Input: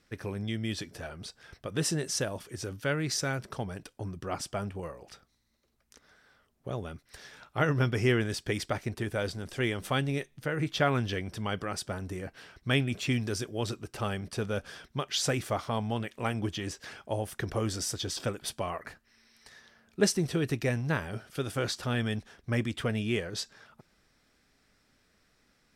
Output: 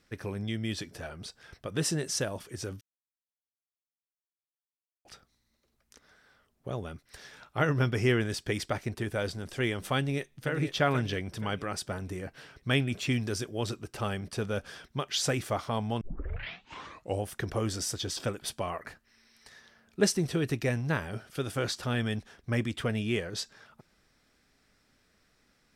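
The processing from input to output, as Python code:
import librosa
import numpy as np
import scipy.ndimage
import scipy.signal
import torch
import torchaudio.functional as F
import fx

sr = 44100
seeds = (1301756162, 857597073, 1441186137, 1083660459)

y = fx.echo_throw(x, sr, start_s=9.98, length_s=0.55, ms=480, feedback_pct=45, wet_db=-7.5)
y = fx.edit(y, sr, fx.silence(start_s=2.81, length_s=2.24),
    fx.tape_start(start_s=16.01, length_s=1.25), tone=tone)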